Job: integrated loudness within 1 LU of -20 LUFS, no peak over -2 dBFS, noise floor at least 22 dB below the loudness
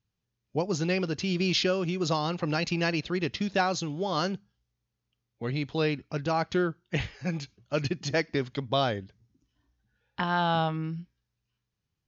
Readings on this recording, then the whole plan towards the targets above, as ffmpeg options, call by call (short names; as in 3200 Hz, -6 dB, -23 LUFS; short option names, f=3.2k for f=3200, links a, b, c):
loudness -29.5 LUFS; peak -13.0 dBFS; loudness target -20.0 LUFS
-> -af "volume=9.5dB"